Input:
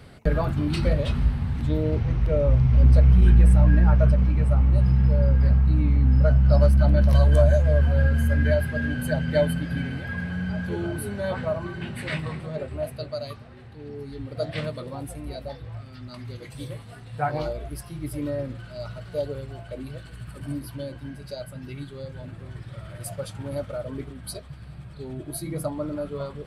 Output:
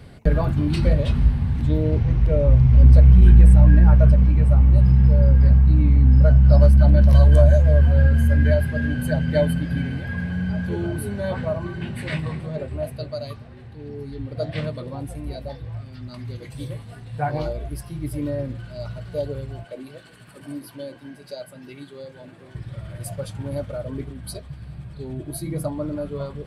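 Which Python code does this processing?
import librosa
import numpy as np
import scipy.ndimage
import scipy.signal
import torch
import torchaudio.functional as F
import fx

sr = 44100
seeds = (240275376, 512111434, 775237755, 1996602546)

y = fx.high_shelf(x, sr, hz=9200.0, db=-7.0, at=(14.1, 15.12))
y = fx.highpass(y, sr, hz=290.0, slope=12, at=(19.64, 22.55))
y = fx.low_shelf(y, sr, hz=320.0, db=5.0)
y = fx.notch(y, sr, hz=1300.0, q=14.0)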